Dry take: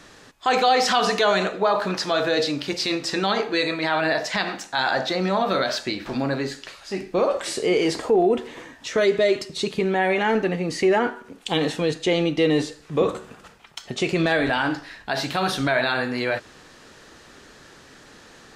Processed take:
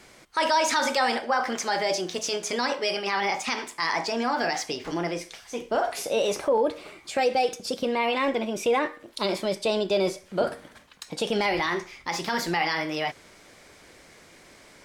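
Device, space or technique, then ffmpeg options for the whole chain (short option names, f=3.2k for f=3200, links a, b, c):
nightcore: -af "asetrate=55125,aresample=44100,volume=-4dB"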